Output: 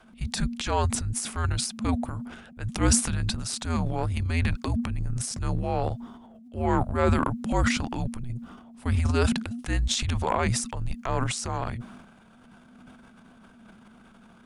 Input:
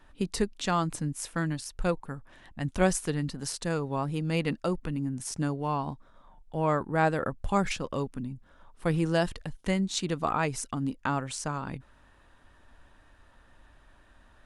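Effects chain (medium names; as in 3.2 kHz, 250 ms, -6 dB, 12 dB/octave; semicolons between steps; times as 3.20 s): frequency shift -250 Hz; transient shaper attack -6 dB, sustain +10 dB; trim +3 dB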